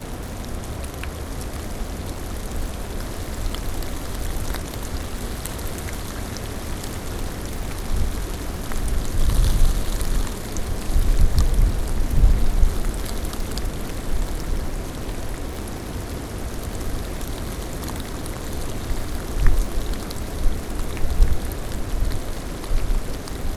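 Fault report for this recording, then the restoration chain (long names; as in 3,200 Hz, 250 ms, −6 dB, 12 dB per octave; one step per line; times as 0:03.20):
surface crackle 36 per second −28 dBFS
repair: click removal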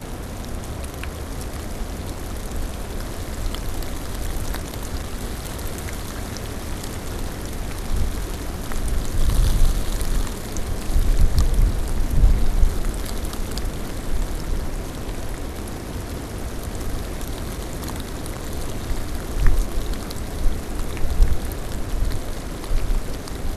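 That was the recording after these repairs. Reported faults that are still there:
none of them is left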